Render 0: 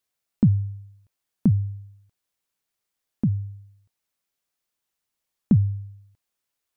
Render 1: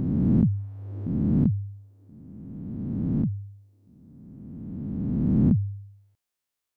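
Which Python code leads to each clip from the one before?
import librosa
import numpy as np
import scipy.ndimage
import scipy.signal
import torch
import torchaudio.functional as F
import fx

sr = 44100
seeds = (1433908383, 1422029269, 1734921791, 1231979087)

y = fx.spec_swells(x, sr, rise_s=2.61)
y = y * librosa.db_to_amplitude(-6.5)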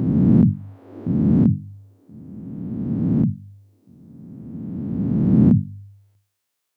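y = scipy.signal.sosfilt(scipy.signal.butter(2, 100.0, 'highpass', fs=sr, output='sos'), x)
y = fx.hum_notches(y, sr, base_hz=50, count=6)
y = y * librosa.db_to_amplitude(8.0)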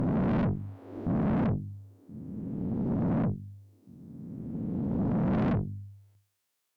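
y = fx.tube_stage(x, sr, drive_db=25.0, bias=0.55)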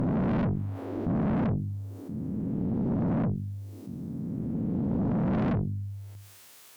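y = fx.env_flatten(x, sr, amount_pct=50)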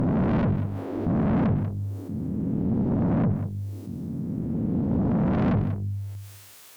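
y = fx.peak_eq(x, sr, hz=86.0, db=3.5, octaves=0.34)
y = y + 10.0 ** (-11.0 / 20.0) * np.pad(y, (int(190 * sr / 1000.0), 0))[:len(y)]
y = y * librosa.db_to_amplitude(3.5)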